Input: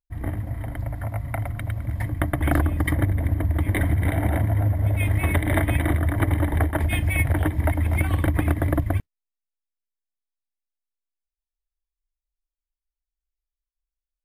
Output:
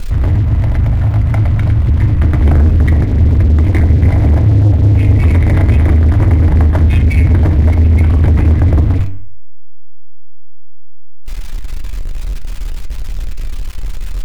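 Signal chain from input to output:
converter with a step at zero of −30.5 dBFS
RIAA equalisation playback
on a send at −5 dB: convolution reverb RT60 0.40 s, pre-delay 3 ms
on the sum: leveller curve on the samples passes 3
hum removal 95.93 Hz, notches 33
one half of a high-frequency compander encoder only
level −7.5 dB

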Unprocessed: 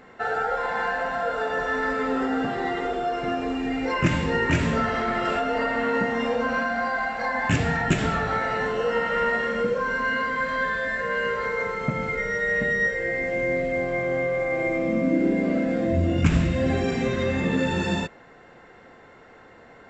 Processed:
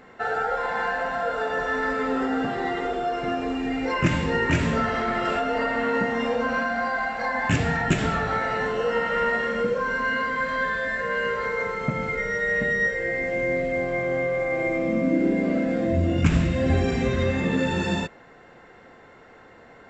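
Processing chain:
0:16.69–0:17.31: parametric band 65 Hz +12.5 dB 0.92 octaves

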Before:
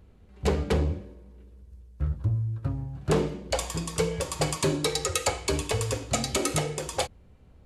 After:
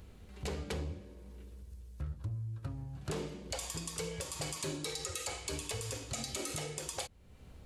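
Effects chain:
high-shelf EQ 2,300 Hz +10 dB
brickwall limiter −14.5 dBFS, peak gain reduction 11 dB
downward compressor 2 to 1, threshold −48 dBFS, peak gain reduction 14.5 dB
level +1 dB

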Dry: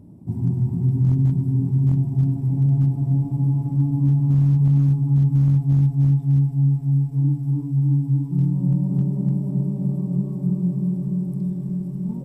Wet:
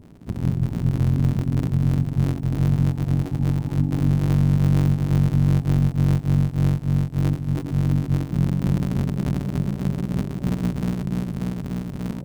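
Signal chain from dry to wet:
sub-harmonics by changed cycles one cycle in 3, muted

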